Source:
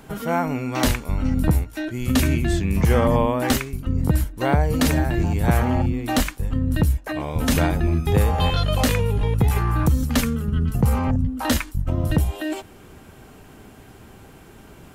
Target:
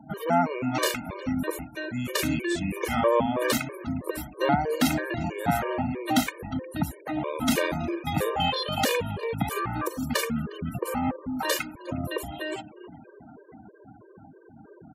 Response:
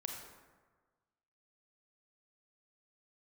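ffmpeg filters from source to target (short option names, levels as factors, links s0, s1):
-filter_complex "[0:a]acrossover=split=280|3000[s0][s1][s2];[s0]acompressor=threshold=0.0631:ratio=6[s3];[s3][s1][s2]amix=inputs=3:normalize=0,asplit=6[s4][s5][s6][s7][s8][s9];[s5]adelay=358,afreqshift=51,volume=0.0891[s10];[s6]adelay=716,afreqshift=102,volume=0.055[s11];[s7]adelay=1074,afreqshift=153,volume=0.0343[s12];[s8]adelay=1432,afreqshift=204,volume=0.0211[s13];[s9]adelay=1790,afreqshift=255,volume=0.0132[s14];[s4][s10][s11][s12][s13][s14]amix=inputs=6:normalize=0,asplit=2[s15][s16];[1:a]atrim=start_sample=2205,lowpass=6900[s17];[s16][s17]afir=irnorm=-1:irlink=0,volume=0.266[s18];[s15][s18]amix=inputs=2:normalize=0,afftfilt=real='re*gte(hypot(re,im),0.01)':imag='im*gte(hypot(re,im),0.01)':win_size=1024:overlap=0.75,highpass=150,afftfilt=real='re*gt(sin(2*PI*3.1*pts/sr)*(1-2*mod(floor(b*sr/1024/310),2)),0)':imag='im*gt(sin(2*PI*3.1*pts/sr)*(1-2*mod(floor(b*sr/1024/310),2)),0)':win_size=1024:overlap=0.75"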